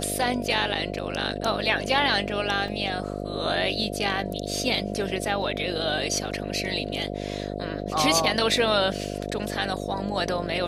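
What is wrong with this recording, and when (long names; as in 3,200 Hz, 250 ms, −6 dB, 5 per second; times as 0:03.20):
mains buzz 50 Hz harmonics 14 −32 dBFS
0:02.68: drop-out 2.2 ms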